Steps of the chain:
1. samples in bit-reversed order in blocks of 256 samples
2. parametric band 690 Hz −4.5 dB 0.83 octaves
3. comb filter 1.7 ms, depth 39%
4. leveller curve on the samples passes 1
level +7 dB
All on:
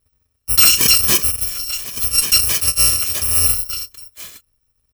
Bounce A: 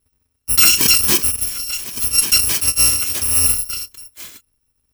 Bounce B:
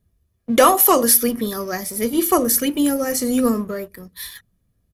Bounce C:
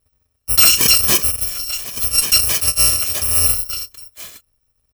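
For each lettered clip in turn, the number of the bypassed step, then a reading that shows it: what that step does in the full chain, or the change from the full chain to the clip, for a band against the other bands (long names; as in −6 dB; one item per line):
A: 3, 250 Hz band +3.0 dB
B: 1, 250 Hz band +22.5 dB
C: 2, 500 Hz band +2.0 dB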